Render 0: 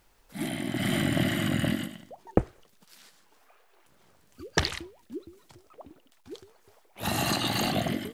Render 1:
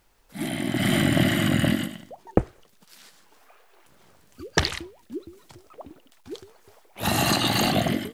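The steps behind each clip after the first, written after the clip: AGC gain up to 5.5 dB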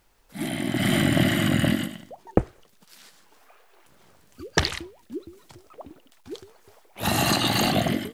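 nothing audible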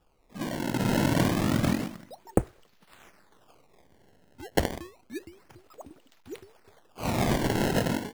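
decimation with a swept rate 21×, swing 160% 0.29 Hz; gain -3.5 dB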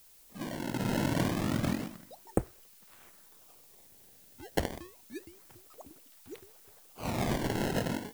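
added noise blue -53 dBFS; gain -5.5 dB

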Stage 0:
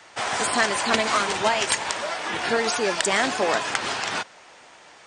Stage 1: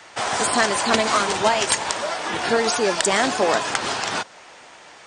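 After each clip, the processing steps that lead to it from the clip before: dynamic EQ 2200 Hz, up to -4 dB, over -37 dBFS, Q 1; gain +4 dB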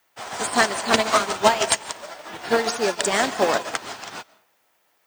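added noise violet -46 dBFS; digital reverb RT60 0.57 s, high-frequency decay 0.65×, pre-delay 0.1 s, DRR 8.5 dB; upward expander 2.5:1, over -33 dBFS; gain +3.5 dB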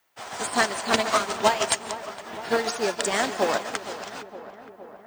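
darkening echo 0.463 s, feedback 71%, low-pass 1900 Hz, level -13.5 dB; gain -3.5 dB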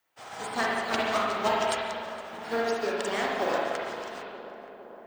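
dynamic EQ 8500 Hz, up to -6 dB, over -45 dBFS, Q 1.1; spring tank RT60 1.5 s, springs 39/55 ms, chirp 35 ms, DRR -3 dB; gain -8 dB

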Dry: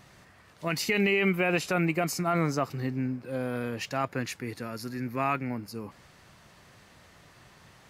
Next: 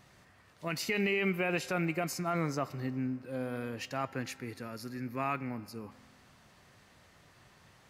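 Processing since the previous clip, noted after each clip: reverb RT60 1.9 s, pre-delay 4 ms, DRR 15.5 dB; gain -5.5 dB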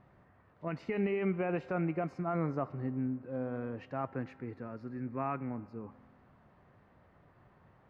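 LPF 1200 Hz 12 dB/oct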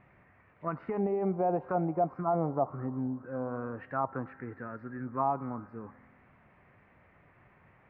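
envelope low-pass 780–2400 Hz down, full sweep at -29 dBFS

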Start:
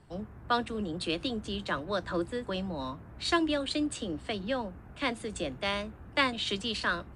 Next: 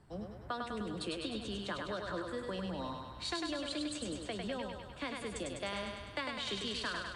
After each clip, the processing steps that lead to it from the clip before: bell 2800 Hz -2.5 dB; compressor, threshold -32 dBFS, peak gain reduction 11 dB; thinning echo 0.101 s, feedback 68%, high-pass 360 Hz, level -3 dB; gain -4 dB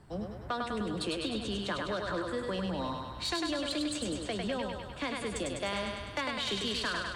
sine folder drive 5 dB, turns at -22.5 dBFS; gain -3 dB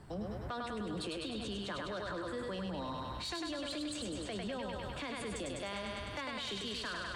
limiter -35.5 dBFS, peak gain reduction 10 dB; gain +2.5 dB

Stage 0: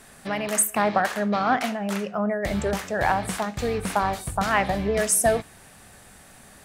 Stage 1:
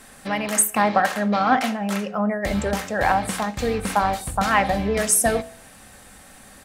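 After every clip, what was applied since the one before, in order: comb 3.8 ms, depth 34%; de-hum 60.09 Hz, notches 15; gain +2.5 dB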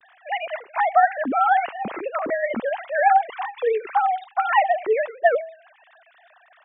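sine-wave speech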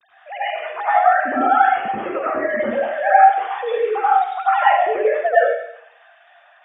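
reverb RT60 0.70 s, pre-delay 83 ms, DRR -8 dB; gain -10.5 dB

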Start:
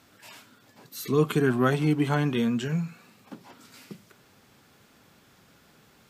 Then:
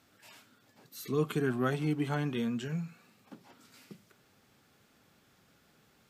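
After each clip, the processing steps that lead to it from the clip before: notch 1000 Hz, Q 18; gain -7.5 dB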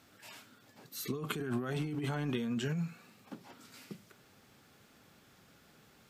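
negative-ratio compressor -35 dBFS, ratio -1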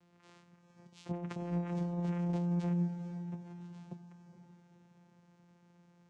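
vocoder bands 4, saw 174 Hz; diffused feedback echo 0.467 s, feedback 42%, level -10.5 dB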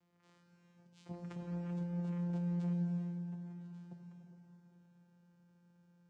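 reverb, pre-delay 3 ms, DRR 3 dB; gain -8.5 dB

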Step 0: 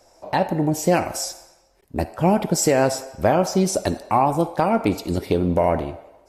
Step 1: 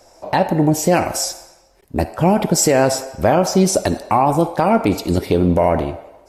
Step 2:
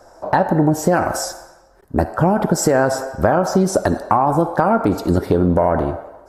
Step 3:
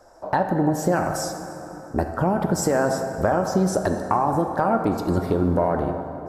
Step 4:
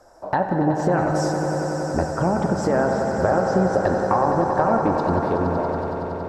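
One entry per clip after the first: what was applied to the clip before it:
maximiser +10 dB; gain -4 dB
resonant high shelf 1900 Hz -7 dB, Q 3; compressor, threshold -14 dBFS, peak gain reduction 6 dB; gain +3 dB
plate-style reverb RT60 4.2 s, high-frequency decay 0.5×, DRR 7.5 dB; gain -6 dB
ending faded out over 1.31 s; treble ducked by the level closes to 2300 Hz, closed at -16 dBFS; swelling echo 93 ms, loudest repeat 5, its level -11 dB

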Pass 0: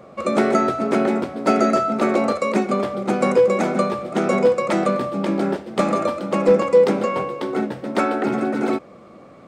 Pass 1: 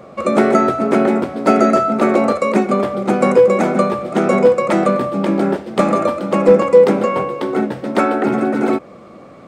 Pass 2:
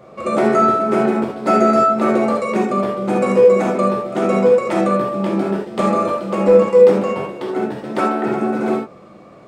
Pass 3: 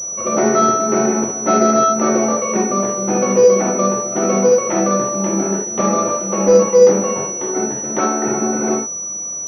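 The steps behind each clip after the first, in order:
dynamic EQ 4800 Hz, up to -5 dB, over -41 dBFS, Q 0.79; gain +5 dB
non-linear reverb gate 0.1 s flat, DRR -1.5 dB; gain -6.5 dB
pulse-width modulation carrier 5900 Hz

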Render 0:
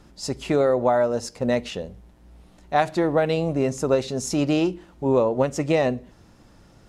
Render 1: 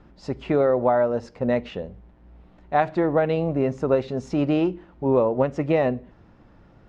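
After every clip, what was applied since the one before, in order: LPF 2300 Hz 12 dB/oct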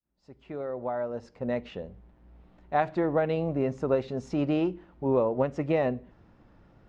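opening faded in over 2.05 s; gain -5 dB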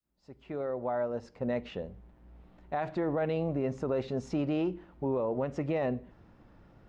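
limiter -22.5 dBFS, peak gain reduction 10.5 dB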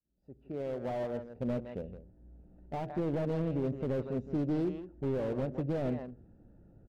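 Wiener smoothing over 41 samples; outdoor echo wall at 28 m, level -12 dB; slew limiter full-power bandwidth 15 Hz

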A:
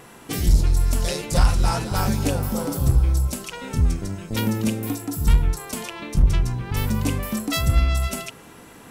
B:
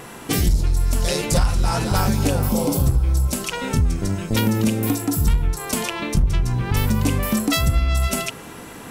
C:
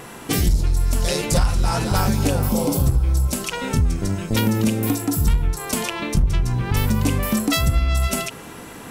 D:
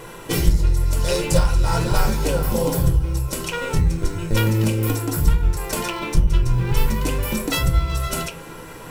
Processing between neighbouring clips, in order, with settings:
compressor 4:1, threshold -23 dBFS, peak gain reduction 10.5 dB; spectral repair 2.51–2.79, 980–2000 Hz after; gain +7.5 dB
ending taper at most 340 dB/s
in parallel at -9 dB: decimation with a swept rate 17×, swing 60% 0.31 Hz; on the sum: reverb RT60 0.25 s, pre-delay 3 ms, DRR 4 dB; gain -4 dB

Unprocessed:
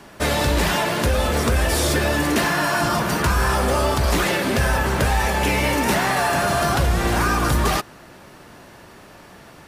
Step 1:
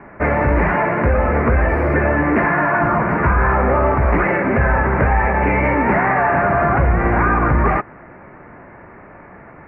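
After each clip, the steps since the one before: elliptic low-pass 2200 Hz, stop band 40 dB; gain +5 dB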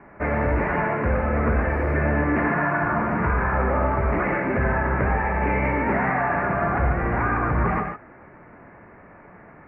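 non-linear reverb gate 0.17 s rising, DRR 4 dB; gain -8 dB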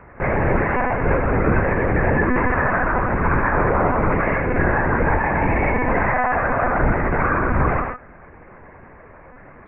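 monotone LPC vocoder at 8 kHz 250 Hz; gain +3.5 dB

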